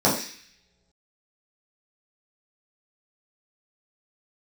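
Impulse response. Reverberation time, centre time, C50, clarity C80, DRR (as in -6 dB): no single decay rate, 34 ms, 6.0 dB, 9.5 dB, -7.0 dB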